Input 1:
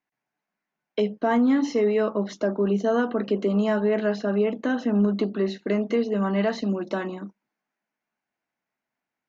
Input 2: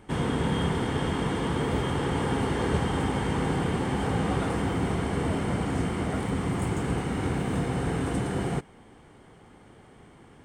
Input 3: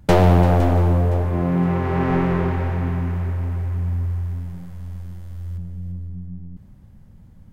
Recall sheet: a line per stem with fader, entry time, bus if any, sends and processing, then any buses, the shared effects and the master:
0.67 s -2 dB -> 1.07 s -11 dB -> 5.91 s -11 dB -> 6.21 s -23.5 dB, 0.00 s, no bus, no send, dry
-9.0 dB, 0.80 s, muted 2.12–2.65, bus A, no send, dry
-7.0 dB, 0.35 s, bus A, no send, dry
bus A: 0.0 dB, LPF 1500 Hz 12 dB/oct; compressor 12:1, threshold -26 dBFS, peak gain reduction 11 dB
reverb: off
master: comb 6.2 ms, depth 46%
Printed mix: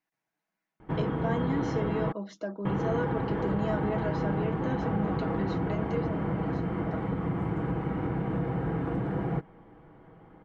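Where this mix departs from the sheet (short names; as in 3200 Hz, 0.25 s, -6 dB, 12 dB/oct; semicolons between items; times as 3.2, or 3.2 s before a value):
stem 2 -9.0 dB -> -1.0 dB; stem 3: muted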